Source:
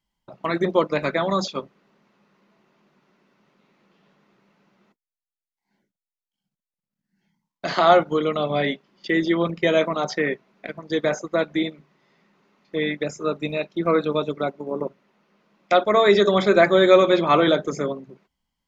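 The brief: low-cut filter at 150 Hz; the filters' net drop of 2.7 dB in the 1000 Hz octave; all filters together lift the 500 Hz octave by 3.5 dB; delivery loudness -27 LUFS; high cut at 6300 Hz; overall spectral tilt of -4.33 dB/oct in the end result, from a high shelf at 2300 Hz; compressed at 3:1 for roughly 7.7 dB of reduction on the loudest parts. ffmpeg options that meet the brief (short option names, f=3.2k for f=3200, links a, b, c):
-af "highpass=150,lowpass=6.3k,equalizer=f=500:t=o:g=6.5,equalizer=f=1k:t=o:g=-7,highshelf=f=2.3k:g=-3,acompressor=threshold=-17dB:ratio=3,volume=-4dB"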